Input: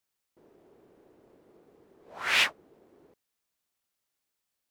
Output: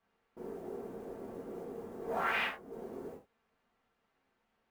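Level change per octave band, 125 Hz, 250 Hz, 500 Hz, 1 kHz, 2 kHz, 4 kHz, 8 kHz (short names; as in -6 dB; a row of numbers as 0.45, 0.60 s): n/a, +10.5 dB, +8.5 dB, +1.0 dB, -7.5 dB, -14.5 dB, -19.5 dB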